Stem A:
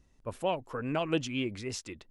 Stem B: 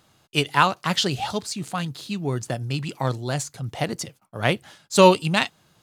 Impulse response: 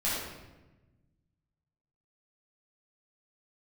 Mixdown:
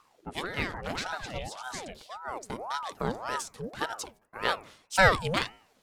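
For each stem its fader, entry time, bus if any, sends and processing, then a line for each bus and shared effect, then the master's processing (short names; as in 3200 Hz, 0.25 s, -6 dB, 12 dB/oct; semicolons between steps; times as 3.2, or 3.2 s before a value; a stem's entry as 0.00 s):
+1.0 dB, 0.00 s, no send, compressor, threshold -32 dBFS, peak gain reduction 8.5 dB
-4.0 dB, 0.00 s, no send, de-esser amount 40%; de-hum 109.6 Hz, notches 18; auto duck -7 dB, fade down 0.30 s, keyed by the first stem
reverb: off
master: ring modulator with a swept carrier 720 Hz, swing 60%, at 1.8 Hz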